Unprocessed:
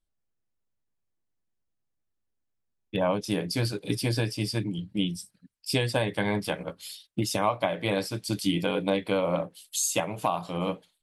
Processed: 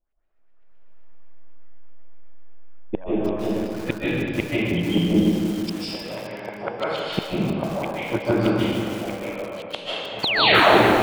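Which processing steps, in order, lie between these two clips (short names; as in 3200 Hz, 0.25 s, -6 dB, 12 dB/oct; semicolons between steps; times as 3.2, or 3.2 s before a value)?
tape stop at the end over 0.68 s; bell 120 Hz -9 dB 1.3 oct; AGC gain up to 14 dB; flipped gate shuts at -11 dBFS, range -32 dB; LFO low-pass saw up 7.9 Hz 550–2800 Hz; painted sound fall, 10.23–10.63, 270–4700 Hz -25 dBFS; reverb RT60 2.3 s, pre-delay 0.11 s, DRR -8.5 dB; lo-fi delay 0.31 s, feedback 55%, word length 5-bit, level -11 dB; gain +2.5 dB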